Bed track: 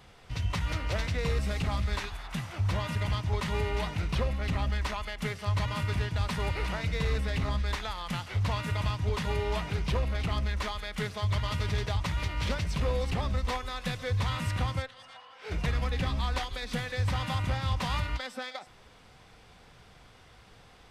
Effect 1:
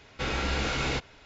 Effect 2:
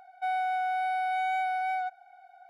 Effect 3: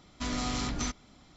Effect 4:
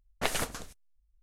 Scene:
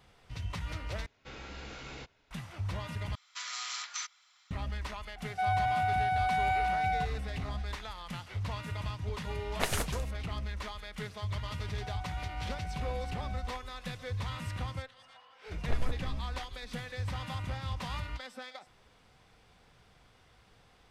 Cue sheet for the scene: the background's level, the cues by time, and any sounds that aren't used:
bed track −7 dB
0:01.06: overwrite with 1 −16 dB
0:03.15: overwrite with 3 −1 dB + high-pass filter 1,200 Hz 24 dB per octave
0:05.16: mix in 2 −0.5 dB
0:09.38: mix in 4 −1.5 dB
0:11.59: mix in 2 −16.5 dB
0:15.47: mix in 4 −12 dB + spectral tilt −4 dB per octave

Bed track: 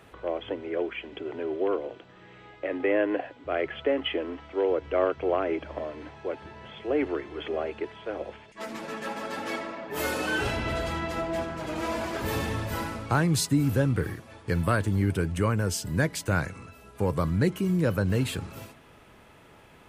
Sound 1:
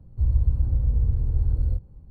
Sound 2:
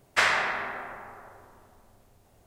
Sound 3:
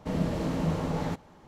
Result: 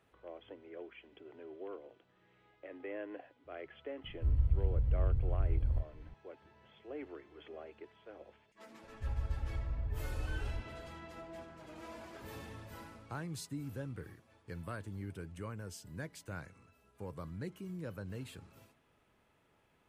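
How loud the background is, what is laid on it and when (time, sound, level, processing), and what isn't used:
bed track −18.5 dB
0:04.04: mix in 1 −9 dB + upward compression 4 to 1, threshold −36 dBFS
0:08.83: mix in 1 −16 dB
not used: 2, 3

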